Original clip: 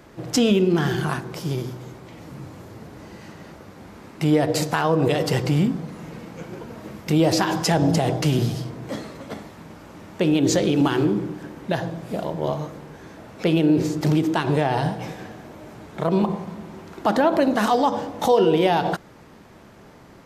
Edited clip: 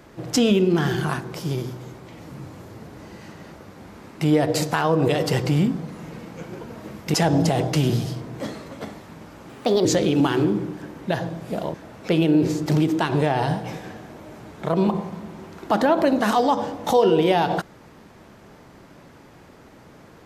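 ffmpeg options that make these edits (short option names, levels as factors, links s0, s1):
-filter_complex "[0:a]asplit=5[s0][s1][s2][s3][s4];[s0]atrim=end=7.142[s5];[s1]atrim=start=7.628:end=9.984[s6];[s2]atrim=start=9.98:end=10.46,asetpts=PTS-STARTPTS,asetrate=58653,aresample=44100[s7];[s3]atrim=start=10.456:end=12.352[s8];[s4]atrim=start=13.088[s9];[s5][s6]acrossfade=d=0.004:c1=hsin:c2=hsin[s10];[s10][s7]acrossfade=d=0.004:c1=hsin:c2=hsin[s11];[s11][s8]acrossfade=d=0.004:c1=hsin:c2=hsin[s12];[s12][s9]acrossfade=d=0.004:c1=hsin:c2=hsin"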